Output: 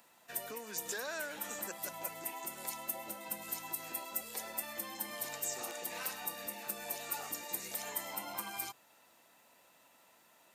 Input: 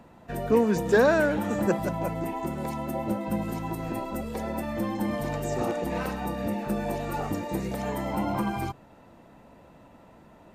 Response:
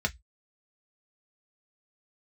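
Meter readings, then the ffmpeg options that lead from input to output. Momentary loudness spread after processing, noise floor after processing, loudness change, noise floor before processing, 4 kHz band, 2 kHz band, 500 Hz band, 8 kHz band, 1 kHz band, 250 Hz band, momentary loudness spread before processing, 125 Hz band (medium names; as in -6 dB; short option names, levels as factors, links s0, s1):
3 LU, -66 dBFS, -11.0 dB, -53 dBFS, -1.5 dB, -10.0 dB, -20.0 dB, +5.5 dB, -13.0 dB, -25.0 dB, 10 LU, -28.5 dB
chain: -af "acompressor=threshold=0.0562:ratio=6,aderivative,volume=2.11"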